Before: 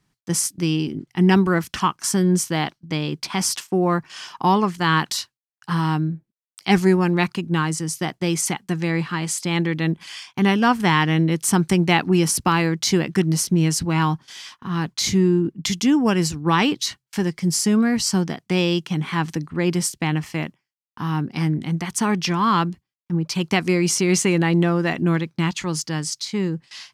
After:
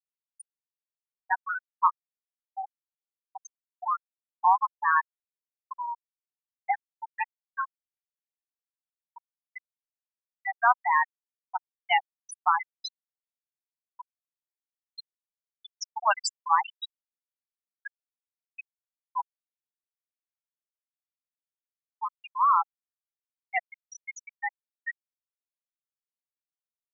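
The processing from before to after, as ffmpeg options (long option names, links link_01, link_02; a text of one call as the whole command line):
ffmpeg -i in.wav -filter_complex "[0:a]asettb=1/sr,asplit=3[link_01][link_02][link_03];[link_01]atrim=end=15.814[link_04];[link_02]atrim=start=15.81:end=16.48,asetpts=PTS-STARTPTS,afade=type=in:duration=0.004:curve=qsin,afade=type=out:start_time=0.666:duration=0.004:curve=qsin,acontrast=89[link_05];[link_03]atrim=start=16.476[link_06];[link_04][link_05]acrossfade=duration=0.004:curve1=hsin:curve2=qsin[link_07];[link_07][link_06]acrossfade=duration=0.004:curve1=qsin:curve2=hsin,asplit=3[link_08][link_09][link_10];[link_08]atrim=end=14.19,asetpts=PTS-STARTPTS,afade=type=out:start_time=13.85:duration=0.34:silence=0.141254[link_11];[link_09]atrim=start=14.19:end=14.72,asetpts=PTS-STARTPTS,volume=-17dB[link_12];[link_10]atrim=start=14.72,asetpts=PTS-STARTPTS,afade=type=in:duration=0.34:silence=0.141254[link_13];[link_11][link_12][link_13]concat=n=3:v=0:a=1,highpass=frequency=700:width=0.5412,highpass=frequency=700:width=1.3066,afftfilt=real='re*gte(hypot(re,im),0.398)':imag='im*gte(hypot(re,im),0.398)':win_size=1024:overlap=0.75" out.wav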